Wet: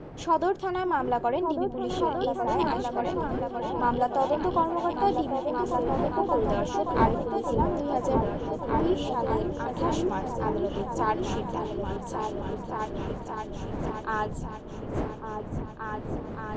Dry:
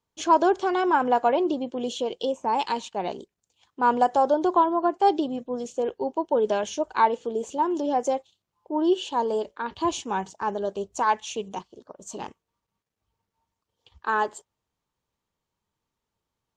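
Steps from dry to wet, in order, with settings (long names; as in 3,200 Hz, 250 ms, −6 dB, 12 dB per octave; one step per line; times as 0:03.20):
wind on the microphone 420 Hz −33 dBFS
high-frequency loss of the air 58 metres
echo whose low-pass opens from repeat to repeat 575 ms, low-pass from 200 Hz, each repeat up 2 octaves, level 0 dB
level −5 dB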